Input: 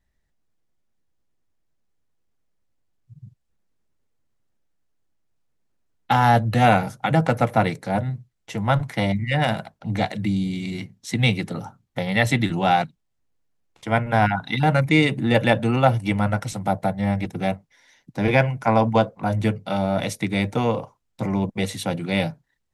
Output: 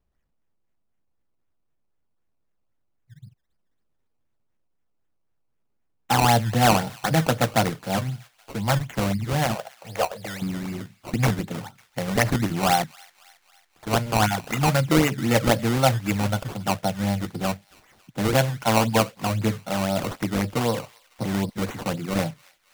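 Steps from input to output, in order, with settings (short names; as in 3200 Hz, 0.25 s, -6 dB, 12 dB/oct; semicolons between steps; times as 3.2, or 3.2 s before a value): decimation with a swept rate 18×, swing 100% 3.9 Hz; 9.55–10.42 resonant low shelf 370 Hz -10.5 dB, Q 3; thin delay 0.275 s, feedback 57%, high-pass 1500 Hz, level -22 dB; gain -2 dB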